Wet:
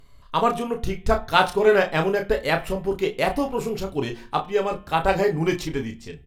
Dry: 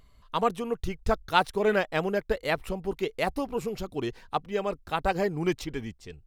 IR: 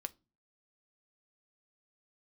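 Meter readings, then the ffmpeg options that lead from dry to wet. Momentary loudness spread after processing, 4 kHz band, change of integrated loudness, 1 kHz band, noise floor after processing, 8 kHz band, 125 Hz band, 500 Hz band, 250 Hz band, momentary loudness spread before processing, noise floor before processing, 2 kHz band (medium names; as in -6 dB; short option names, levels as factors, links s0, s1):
10 LU, +6.0 dB, +6.0 dB, +6.0 dB, -48 dBFS, +6.0 dB, +6.5 dB, +6.5 dB, +5.0 dB, 9 LU, -58 dBFS, +6.0 dB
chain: -filter_complex "[0:a]asplit=2[s0][s1];[s1]adelay=31,volume=0.473[s2];[s0][s2]amix=inputs=2:normalize=0,bandreject=f=176.9:t=h:w=4,bandreject=f=353.8:t=h:w=4,bandreject=f=530.7:t=h:w=4,bandreject=f=707.6:t=h:w=4,bandreject=f=884.5:t=h:w=4,bandreject=f=1061.4:t=h:w=4,bandreject=f=1238.3:t=h:w=4,bandreject=f=1415.2:t=h:w=4,bandreject=f=1592.1:t=h:w=4,bandreject=f=1769:t=h:w=4,bandreject=f=1945.9:t=h:w=4,bandreject=f=2122.8:t=h:w=4,bandreject=f=2299.7:t=h:w=4,bandreject=f=2476.6:t=h:w=4,bandreject=f=2653.5:t=h:w=4,bandreject=f=2830.4:t=h:w=4,bandreject=f=3007.3:t=h:w=4,bandreject=f=3184.2:t=h:w=4,bandreject=f=3361.1:t=h:w=4,bandreject=f=3538:t=h:w=4,bandreject=f=3714.9:t=h:w=4,bandreject=f=3891.8:t=h:w=4[s3];[1:a]atrim=start_sample=2205,asetrate=30870,aresample=44100[s4];[s3][s4]afir=irnorm=-1:irlink=0,volume=2"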